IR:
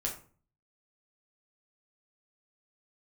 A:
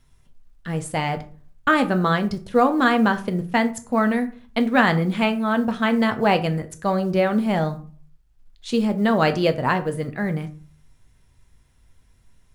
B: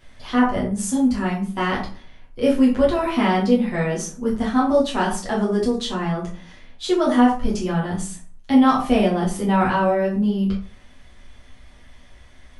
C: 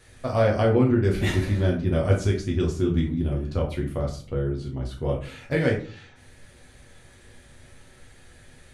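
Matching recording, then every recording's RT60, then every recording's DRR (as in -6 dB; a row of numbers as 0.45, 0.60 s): C; 0.40, 0.40, 0.40 s; 8.0, -5.5, -1.5 dB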